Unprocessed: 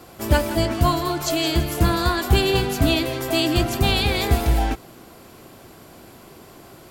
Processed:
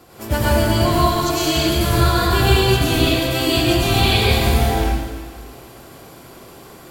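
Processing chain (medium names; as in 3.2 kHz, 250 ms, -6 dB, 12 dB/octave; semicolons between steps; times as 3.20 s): plate-style reverb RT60 1.5 s, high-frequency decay 1×, pre-delay 85 ms, DRR -7.5 dB; trim -3.5 dB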